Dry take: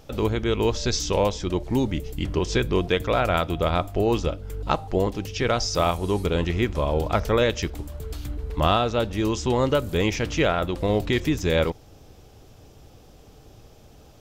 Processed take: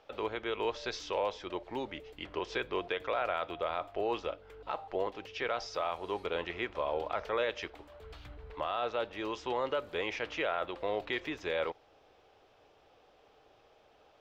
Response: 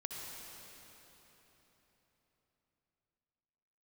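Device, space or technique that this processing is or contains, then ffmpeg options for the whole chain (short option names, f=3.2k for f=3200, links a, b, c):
DJ mixer with the lows and highs turned down: -filter_complex "[0:a]asettb=1/sr,asplit=3[a][b][c];[a]atrim=end=8.024[d];[b]atrim=start=8.02:end=8.53,asetpts=PTS-STARTPTS,afade=t=in:d=0.004:c=qsin,afade=t=out:st=0.506:d=0.004:c=qsin,lowshelf=f=210:t=q:w=1.5:g=8[e];[c]atrim=start=8.526[f];[d][e]acrossfade=d=0.004:c1=hsin:c2=qsin[g];[g][f]acrossfade=d=0.004:c1=qsin:c2=hsin,acrossover=split=430 3800:gain=0.0794 1 0.0631[h][i][j];[h][i][j]amix=inputs=3:normalize=0,alimiter=limit=-17.5dB:level=0:latency=1:release=20,volume=-5dB"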